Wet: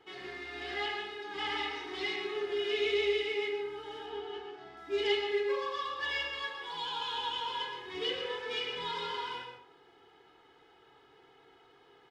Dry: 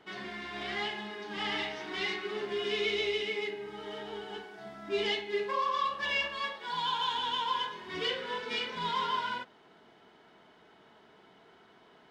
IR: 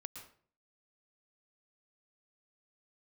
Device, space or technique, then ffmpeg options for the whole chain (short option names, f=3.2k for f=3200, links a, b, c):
microphone above a desk: -filter_complex "[0:a]asettb=1/sr,asplit=3[a][b][c];[a]atrim=end=4.064[d];[b]atrim=start=4.06:end=4.77,asetpts=PTS-STARTPTS,afade=t=in:d=0.004:c=qsin,afade=t=out:st=0.706:d=0.004:c=qsin,lowpass=5.1k[e];[c]atrim=start=4.766[f];[d][e]acrossfade=d=0.004:c1=hsin:c2=qsin[g];[g][f]acrossfade=d=0.004:c1=qsin:c2=hsin,aecho=1:1:2.4:0.81[h];[1:a]atrim=start_sample=2205[i];[h][i]afir=irnorm=-1:irlink=0"